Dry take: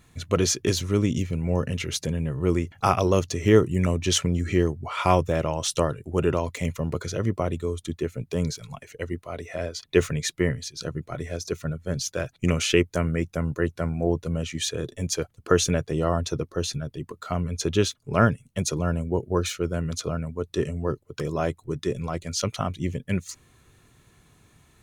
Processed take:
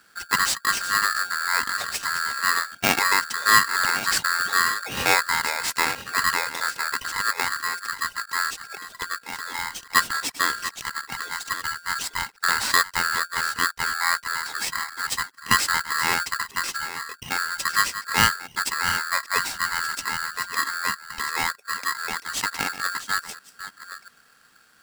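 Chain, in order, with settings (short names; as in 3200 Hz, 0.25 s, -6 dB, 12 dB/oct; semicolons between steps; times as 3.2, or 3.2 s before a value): reverse delay 0.688 s, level -12 dB; polarity switched at an audio rate 1500 Hz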